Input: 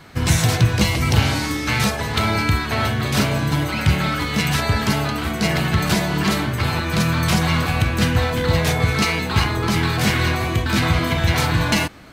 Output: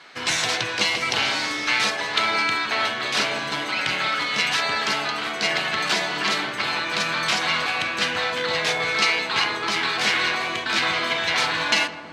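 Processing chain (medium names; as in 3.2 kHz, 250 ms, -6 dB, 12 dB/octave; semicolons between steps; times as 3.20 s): band-pass 400–4800 Hz; tilt shelf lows -5 dB, about 1.4 kHz; on a send: filtered feedback delay 161 ms, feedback 83%, low-pass 1.1 kHz, level -11.5 dB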